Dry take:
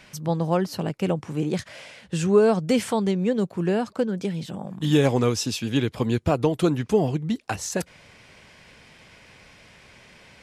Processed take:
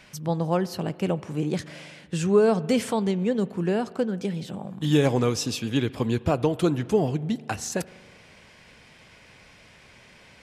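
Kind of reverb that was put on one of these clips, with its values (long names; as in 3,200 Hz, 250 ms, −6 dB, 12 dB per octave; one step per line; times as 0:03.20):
spring reverb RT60 1.9 s, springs 40 ms, chirp 80 ms, DRR 18 dB
level −1.5 dB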